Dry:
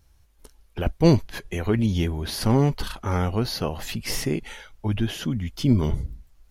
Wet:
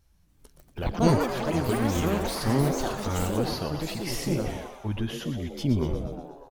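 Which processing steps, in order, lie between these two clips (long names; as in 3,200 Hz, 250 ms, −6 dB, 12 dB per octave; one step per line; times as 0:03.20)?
echo with shifted repeats 120 ms, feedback 56%, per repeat +120 Hz, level −9 dB
delay with pitch and tempo change per echo 279 ms, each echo +6 semitones, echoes 3
level −5.5 dB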